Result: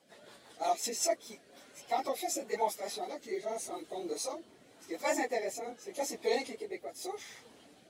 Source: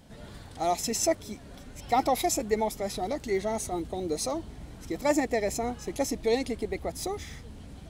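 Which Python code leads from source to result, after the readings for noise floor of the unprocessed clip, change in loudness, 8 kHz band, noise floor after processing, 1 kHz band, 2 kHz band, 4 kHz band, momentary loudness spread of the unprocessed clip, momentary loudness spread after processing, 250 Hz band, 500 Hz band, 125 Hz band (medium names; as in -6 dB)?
-47 dBFS, -6.0 dB, -5.0 dB, -60 dBFS, -5.5 dB, -4.0 dB, -4.5 dB, 18 LU, 17 LU, -11.5 dB, -6.5 dB, under -20 dB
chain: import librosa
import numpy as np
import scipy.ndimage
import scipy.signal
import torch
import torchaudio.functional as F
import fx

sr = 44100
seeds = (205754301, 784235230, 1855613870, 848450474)

y = fx.phase_scramble(x, sr, seeds[0], window_ms=50)
y = scipy.signal.sosfilt(scipy.signal.butter(2, 450.0, 'highpass', fs=sr, output='sos'), y)
y = fx.rotary_switch(y, sr, hz=5.5, then_hz=0.85, switch_at_s=0.88)
y = F.gain(torch.from_numpy(y), -2.0).numpy()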